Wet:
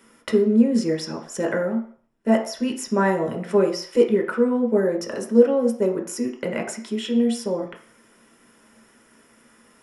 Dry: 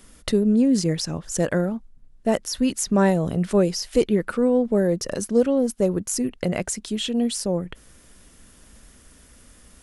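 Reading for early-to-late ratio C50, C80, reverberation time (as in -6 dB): 9.0 dB, 12.0 dB, 0.50 s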